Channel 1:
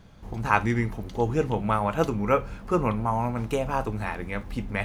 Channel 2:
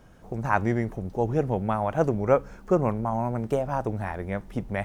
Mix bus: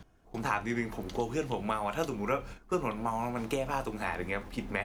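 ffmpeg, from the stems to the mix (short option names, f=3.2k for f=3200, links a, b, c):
-filter_complex "[0:a]acrossover=split=210|2300[a][b][c];[a]acompressor=threshold=-47dB:ratio=4[d];[b]acompressor=threshold=-33dB:ratio=4[e];[c]acompressor=threshold=-43dB:ratio=4[f];[d][e][f]amix=inputs=3:normalize=0,volume=2dB[g];[1:a]aecho=1:1:2.8:0.45,acompressor=threshold=-32dB:ratio=1.5,volume=-1,adelay=27,volume=-12.5dB,asplit=2[h][i];[i]apad=whole_len=213708[j];[g][j]sidechaingate=range=-33dB:threshold=-52dB:ratio=16:detection=peak[k];[k][h]amix=inputs=2:normalize=0"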